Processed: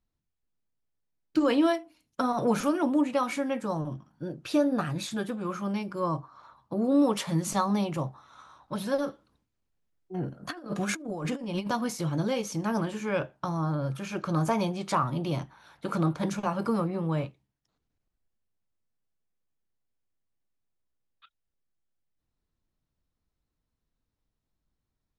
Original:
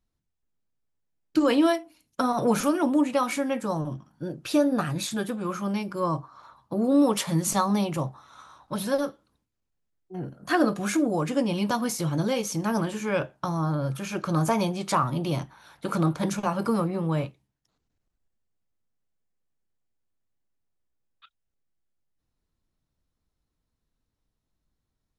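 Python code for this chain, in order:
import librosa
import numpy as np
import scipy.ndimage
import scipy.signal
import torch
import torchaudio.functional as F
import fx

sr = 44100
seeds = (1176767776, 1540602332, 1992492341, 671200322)

y = fx.high_shelf(x, sr, hz=8200.0, db=-9.5)
y = fx.over_compress(y, sr, threshold_db=-29.0, ratio=-0.5, at=(9.06, 11.67), fade=0.02)
y = y * librosa.db_to_amplitude(-2.5)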